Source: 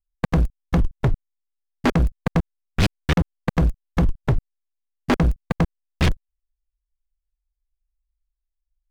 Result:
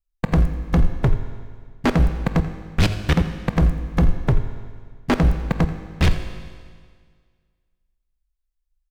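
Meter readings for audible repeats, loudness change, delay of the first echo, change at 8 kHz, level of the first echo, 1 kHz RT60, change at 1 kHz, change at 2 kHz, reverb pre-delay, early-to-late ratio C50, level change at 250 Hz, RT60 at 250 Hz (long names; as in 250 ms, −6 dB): 1, +1.5 dB, 85 ms, +0.5 dB, −16.0 dB, 1.8 s, +0.5 dB, +0.5 dB, 19 ms, 9.0 dB, +1.0 dB, 1.8 s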